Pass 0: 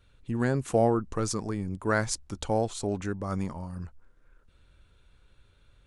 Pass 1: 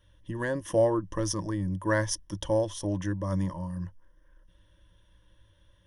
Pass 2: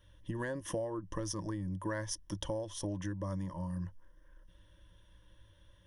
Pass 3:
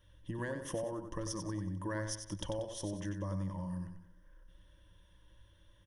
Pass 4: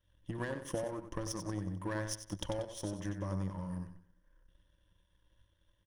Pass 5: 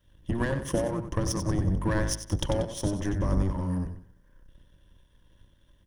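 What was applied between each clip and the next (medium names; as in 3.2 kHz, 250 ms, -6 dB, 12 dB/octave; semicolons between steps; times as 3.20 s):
rippled EQ curve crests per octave 1.2, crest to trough 16 dB; trim -3 dB
compression 8:1, threshold -34 dBFS, peak gain reduction 15.5 dB
feedback delay 93 ms, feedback 40%, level -7.5 dB; trim -2 dB
power-law waveshaper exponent 1.4; trim +4.5 dB
octave divider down 1 oct, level +3 dB; trim +8.5 dB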